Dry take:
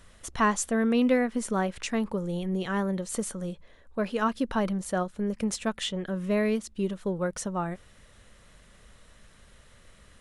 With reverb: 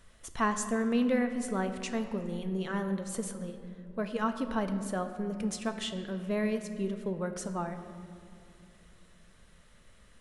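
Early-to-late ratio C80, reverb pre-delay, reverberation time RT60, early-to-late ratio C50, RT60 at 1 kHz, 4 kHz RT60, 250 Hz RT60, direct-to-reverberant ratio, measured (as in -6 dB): 10.0 dB, 5 ms, 2.5 s, 9.0 dB, 2.3 s, 1.4 s, 3.5 s, 7.0 dB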